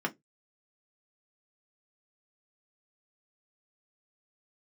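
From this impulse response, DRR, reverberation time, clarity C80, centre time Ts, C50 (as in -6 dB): 1.0 dB, 0.15 s, 35.5 dB, 6 ms, 26.0 dB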